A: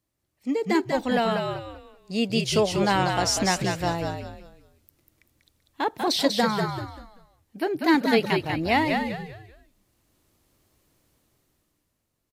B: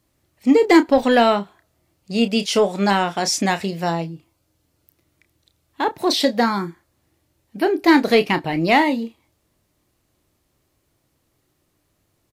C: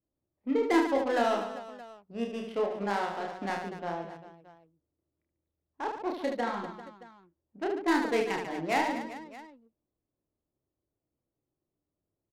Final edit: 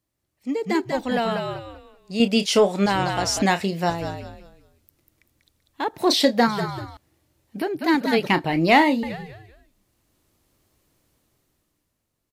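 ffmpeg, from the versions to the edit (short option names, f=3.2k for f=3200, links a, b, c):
-filter_complex "[1:a]asplit=5[a][b][c][d][e];[0:a]asplit=6[f][g][h][i][j][k];[f]atrim=end=2.202[l];[a]atrim=start=2.198:end=2.862[m];[g]atrim=start=2.858:end=3.422[n];[b]atrim=start=3.418:end=3.902[o];[h]atrim=start=3.898:end=5.942[p];[c]atrim=start=5.938:end=6.472[q];[i]atrim=start=6.468:end=6.972[r];[d]atrim=start=6.968:end=7.622[s];[j]atrim=start=7.618:end=8.272[t];[e]atrim=start=8.268:end=9.032[u];[k]atrim=start=9.028[v];[l][m]acrossfade=d=0.004:c1=hsin:c2=hsin[w];[w][n]acrossfade=d=0.004:c1=hsin:c2=hsin[x];[x][o]acrossfade=d=0.004:c1=hsin:c2=hsin[y];[y][p]acrossfade=d=0.004:c1=hsin:c2=hsin[z];[z][q]acrossfade=d=0.004:c1=hsin:c2=hsin[aa];[aa][r]acrossfade=d=0.004:c1=hsin:c2=hsin[ab];[ab][s]acrossfade=d=0.004:c1=hsin:c2=hsin[ac];[ac][t]acrossfade=d=0.004:c1=hsin:c2=hsin[ad];[ad][u]acrossfade=d=0.004:c1=hsin:c2=hsin[ae];[ae][v]acrossfade=d=0.004:c1=hsin:c2=hsin"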